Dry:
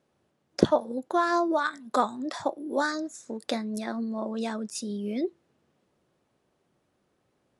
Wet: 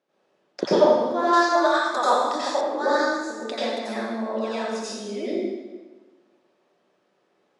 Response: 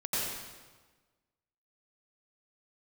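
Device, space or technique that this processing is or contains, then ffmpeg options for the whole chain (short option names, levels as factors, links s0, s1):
supermarket ceiling speaker: -filter_complex "[0:a]highpass=340,lowpass=5600[s0];[1:a]atrim=start_sample=2205[s1];[s0][s1]afir=irnorm=-1:irlink=0,asettb=1/sr,asplit=3[s2][s3][s4];[s2]atrim=end=1.334[s5];[s3]atrim=start=1.33:end=2.61,asetpts=PTS-STARTPTS,afade=t=in:d=0.004:c=qsin,afade=t=out:st=1.276:d=0.004:c=qsin,bass=f=250:g=-9,treble=f=4000:g=10[s6];[s4]atrim=start=2.606[s7];[s5][s6]acrossfade=d=0.004:c1=hsin:c2=qsin[s8];[s8][s7]acrossfade=d=0.004:c1=qsin:c2=hsin"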